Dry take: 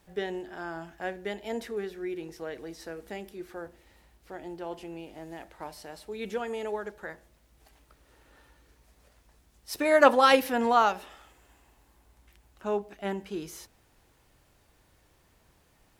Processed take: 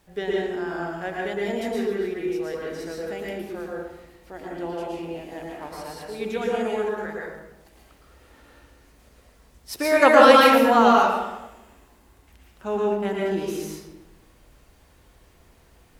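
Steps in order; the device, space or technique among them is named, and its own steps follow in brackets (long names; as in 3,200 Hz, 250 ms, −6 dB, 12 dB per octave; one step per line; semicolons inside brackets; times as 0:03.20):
bathroom (convolution reverb RT60 1.0 s, pre-delay 107 ms, DRR −4 dB)
level +2 dB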